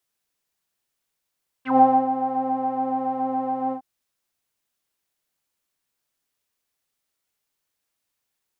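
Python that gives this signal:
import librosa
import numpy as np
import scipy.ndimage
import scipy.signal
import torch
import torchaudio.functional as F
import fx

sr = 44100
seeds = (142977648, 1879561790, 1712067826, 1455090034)

y = fx.sub_patch_pwm(sr, seeds[0], note=60, wave2='saw', interval_st=0, detune_cents=16, level2_db=-9.0, sub_db=-23, noise_db=-30.0, kind='lowpass', cutoff_hz=790.0, q=10.0, env_oct=2.0, env_decay_s=0.06, env_sustain_pct=0, attack_ms=120.0, decay_s=0.3, sustain_db=-11, release_s=0.09, note_s=2.07, lfo_hz=7.1, width_pct=37, width_swing_pct=7)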